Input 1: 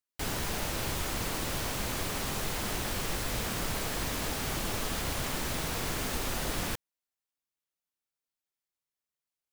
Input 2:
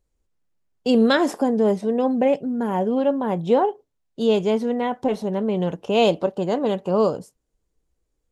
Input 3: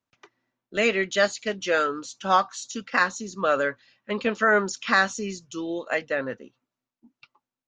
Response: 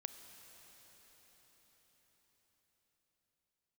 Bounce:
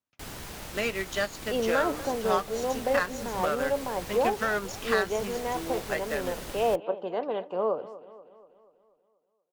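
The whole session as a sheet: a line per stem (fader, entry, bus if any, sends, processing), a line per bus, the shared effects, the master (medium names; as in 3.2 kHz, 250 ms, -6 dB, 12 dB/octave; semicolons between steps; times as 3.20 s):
-2.5 dB, 0.00 s, bus A, no send, no echo send, none
-5.5 dB, 0.65 s, no bus, no send, echo send -16.5 dB, three-band isolator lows -17 dB, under 370 Hz, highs -17 dB, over 4.1 kHz; low-pass that closes with the level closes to 1.6 kHz, closed at -17.5 dBFS
-2.5 dB, 0.00 s, bus A, no send, no echo send, none
bus A: 0.0 dB, Chebyshev shaper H 7 -24 dB, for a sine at -10 dBFS; compression 2:1, threshold -28 dBFS, peak gain reduction 6.5 dB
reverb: none
echo: feedback delay 241 ms, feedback 53%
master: none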